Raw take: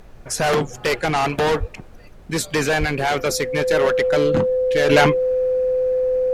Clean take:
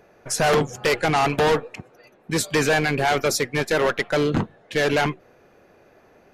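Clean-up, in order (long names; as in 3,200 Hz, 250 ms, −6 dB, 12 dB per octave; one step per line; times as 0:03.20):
notch filter 510 Hz, Q 30
high-pass at the plosives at 0:01.59/0:02.79
noise reduction from a noise print 14 dB
level 0 dB, from 0:04.89 −6.5 dB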